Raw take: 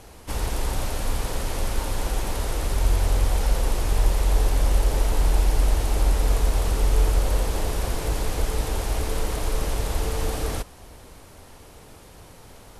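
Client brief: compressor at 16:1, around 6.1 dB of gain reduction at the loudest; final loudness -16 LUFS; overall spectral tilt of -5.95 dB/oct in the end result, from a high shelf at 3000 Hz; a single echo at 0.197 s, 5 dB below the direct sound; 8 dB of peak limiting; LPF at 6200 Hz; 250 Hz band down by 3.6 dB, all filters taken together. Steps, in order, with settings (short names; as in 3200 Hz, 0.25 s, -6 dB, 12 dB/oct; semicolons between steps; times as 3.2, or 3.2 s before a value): LPF 6200 Hz; bell 250 Hz -5 dB; high shelf 3000 Hz -8.5 dB; compressor 16:1, threshold -20 dBFS; limiter -23 dBFS; echo 0.197 s -5 dB; gain +17.5 dB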